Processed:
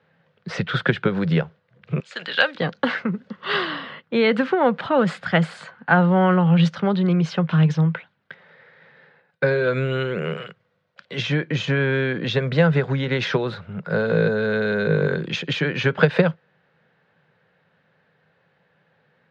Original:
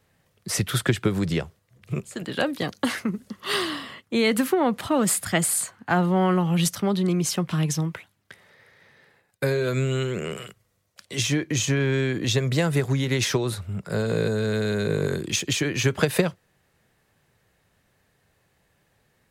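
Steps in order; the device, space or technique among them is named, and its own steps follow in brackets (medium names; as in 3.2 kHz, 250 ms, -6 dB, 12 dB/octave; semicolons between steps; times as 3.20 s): kitchen radio (cabinet simulation 160–3800 Hz, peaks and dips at 160 Hz +10 dB, 320 Hz -5 dB, 510 Hz +7 dB, 870 Hz +3 dB, 1.5 kHz +8 dB); 2.00–2.55 s: frequency weighting ITU-R 468; trim +1.5 dB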